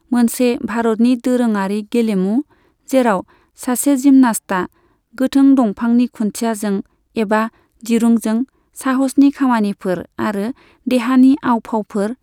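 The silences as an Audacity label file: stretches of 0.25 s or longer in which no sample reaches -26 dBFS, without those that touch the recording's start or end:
2.410000	2.890000	silence
3.210000	3.610000	silence
4.660000	5.180000	silence
6.810000	7.170000	silence
7.480000	7.840000	silence
8.440000	8.770000	silence
10.510000	10.870000	silence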